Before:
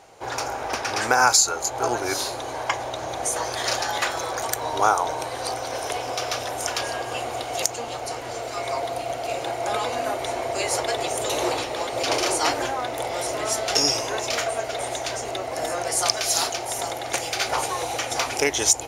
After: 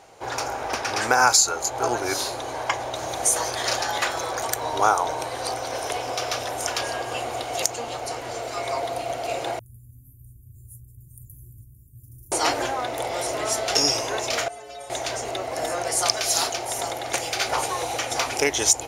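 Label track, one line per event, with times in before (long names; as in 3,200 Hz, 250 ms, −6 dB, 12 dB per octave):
2.940000	3.510000	high-shelf EQ 5,300 Hz +8.5 dB
9.590000	12.320000	inverse Chebyshev band-stop filter 650–3,700 Hz, stop band 80 dB
14.480000	14.900000	stiff-string resonator 64 Hz, decay 0.7 s, inharmonicity 0.03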